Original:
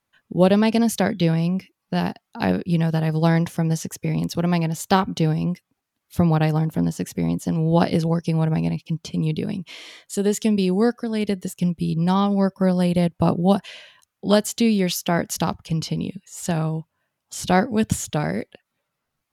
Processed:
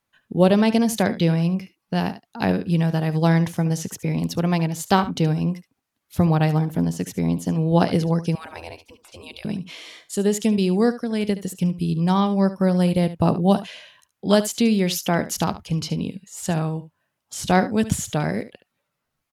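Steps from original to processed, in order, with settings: echo 72 ms -14.5 dB; 8.35–9.45 spectral gate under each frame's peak -20 dB weak

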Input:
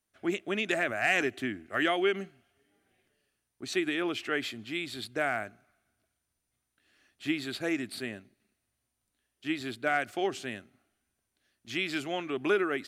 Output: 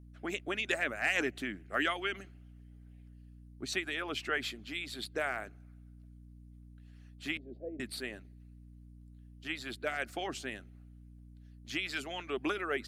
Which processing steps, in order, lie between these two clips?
7.37–7.8 elliptic band-pass 230–640 Hz, stop band 40 dB; harmonic-percussive split harmonic -14 dB; hum 60 Hz, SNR 14 dB

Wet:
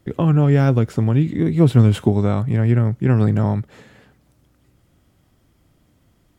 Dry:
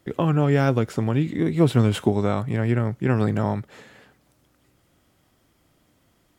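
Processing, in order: low shelf 230 Hz +10.5 dB; gain -1 dB

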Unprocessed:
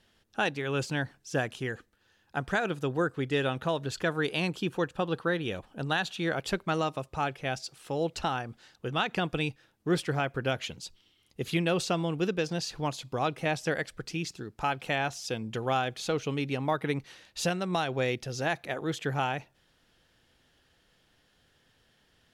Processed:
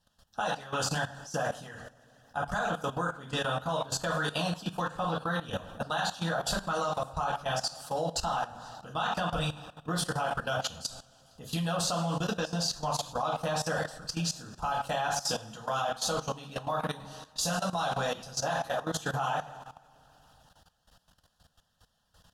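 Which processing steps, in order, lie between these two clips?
fixed phaser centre 910 Hz, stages 4; speakerphone echo 0.11 s, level -16 dB; two-slope reverb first 0.48 s, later 2.4 s, DRR -4 dB; harmonic-percussive split percussive +9 dB; level quantiser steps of 15 dB

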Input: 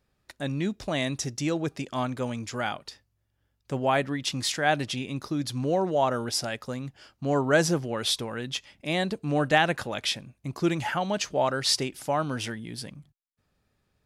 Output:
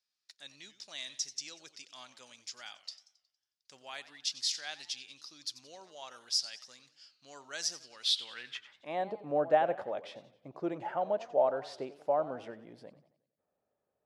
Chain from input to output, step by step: band-pass sweep 5100 Hz -> 600 Hz, 7.99–9.11; warbling echo 91 ms, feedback 49%, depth 176 cents, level -16 dB

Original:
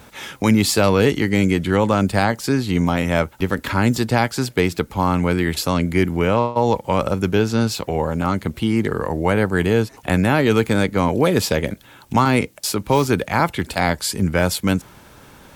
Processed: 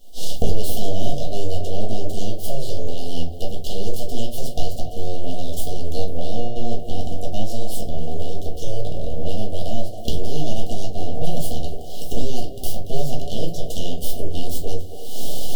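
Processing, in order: recorder AGC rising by 61 dB/s; HPF 79 Hz 24 dB/oct; low shelf 110 Hz -11.5 dB; full-wave rectifier; brick-wall FIR band-stop 780–2800 Hz; on a send: narrowing echo 0.274 s, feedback 59%, band-pass 740 Hz, level -7 dB; on the sum: shoebox room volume 150 m³, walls furnished, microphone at 1.7 m; gain -9.5 dB

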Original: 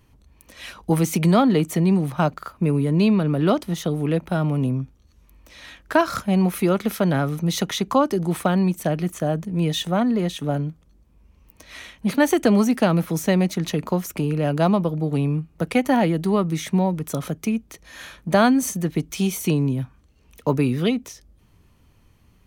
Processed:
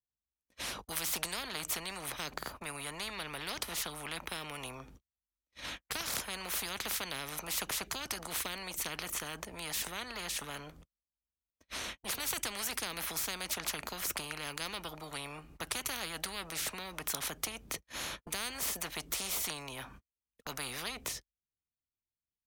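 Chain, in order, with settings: gate -42 dBFS, range -53 dB; spectral compressor 10:1; gain -6.5 dB

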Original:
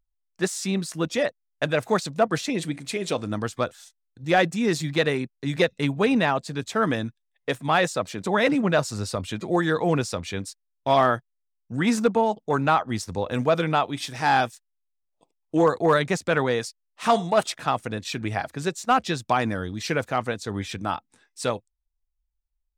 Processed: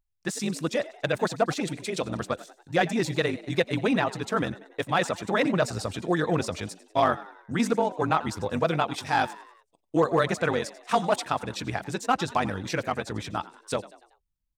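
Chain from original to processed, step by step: frequency-shifting echo 0.148 s, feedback 49%, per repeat +77 Hz, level -18 dB; granular stretch 0.64×, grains 42 ms; gain -1.5 dB

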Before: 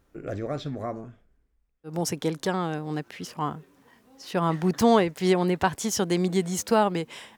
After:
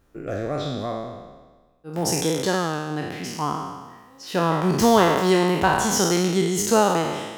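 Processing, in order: spectral trails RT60 1.34 s; notch 2200 Hz, Q 23; gain +1.5 dB

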